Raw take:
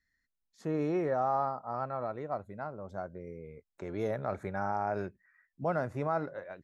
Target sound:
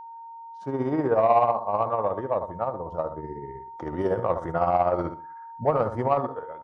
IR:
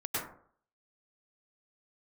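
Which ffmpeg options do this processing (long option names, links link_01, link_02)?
-filter_complex "[0:a]highshelf=frequency=2500:gain=-4.5,asplit=2[link_01][link_02];[link_02]aecho=0:1:79|158|237:0.316|0.0759|0.0182[link_03];[link_01][link_03]amix=inputs=2:normalize=0,dynaudnorm=framelen=210:gausssize=7:maxgain=10.5dB,asetrate=38170,aresample=44100,atempo=1.15535,equalizer=frequency=860:width=1.1:gain=9.5,acontrast=24,tremolo=f=16:d=0.51,aeval=exprs='val(0)+0.0282*sin(2*PI*920*n/s)':channel_layout=same,volume=-8dB"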